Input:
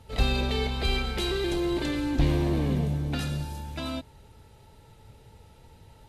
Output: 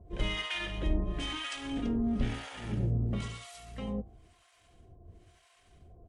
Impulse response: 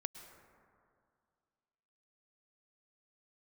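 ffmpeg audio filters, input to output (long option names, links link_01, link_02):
-filter_complex "[0:a]bandreject=frequency=70.19:width_type=h:width=4,bandreject=frequency=140.38:width_type=h:width=4,bandreject=frequency=210.57:width_type=h:width=4,bandreject=frequency=280.76:width_type=h:width=4,bandreject=frequency=350.95:width_type=h:width=4,bandreject=frequency=421.14:width_type=h:width=4,bandreject=frequency=491.33:width_type=h:width=4,bandreject=frequency=561.52:width_type=h:width=4,bandreject=frequency=631.71:width_type=h:width=4,bandreject=frequency=701.9:width_type=h:width=4,bandreject=frequency=772.09:width_type=h:width=4,bandreject=frequency=842.28:width_type=h:width=4,bandreject=frequency=912.47:width_type=h:width=4,bandreject=frequency=982.66:width_type=h:width=4,bandreject=frequency=1052.85:width_type=h:width=4,bandreject=frequency=1123.04:width_type=h:width=4,bandreject=frequency=1193.23:width_type=h:width=4,bandreject=frequency=1263.42:width_type=h:width=4,bandreject=frequency=1333.61:width_type=h:width=4,bandreject=frequency=1403.8:width_type=h:width=4,bandreject=frequency=1473.99:width_type=h:width=4,bandreject=frequency=1544.18:width_type=h:width=4,bandreject=frequency=1614.37:width_type=h:width=4,bandreject=frequency=1684.56:width_type=h:width=4,bandreject=frequency=1754.75:width_type=h:width=4,bandreject=frequency=1824.94:width_type=h:width=4,bandreject=frequency=1895.13:width_type=h:width=4,bandreject=frequency=1965.32:width_type=h:width=4,asetrate=35002,aresample=44100,atempo=1.25992,acrossover=split=790[link_01][link_02];[link_01]aeval=exprs='val(0)*(1-1/2+1/2*cos(2*PI*1*n/s))':channel_layout=same[link_03];[link_02]aeval=exprs='val(0)*(1-1/2-1/2*cos(2*PI*1*n/s))':channel_layout=same[link_04];[link_03][link_04]amix=inputs=2:normalize=0"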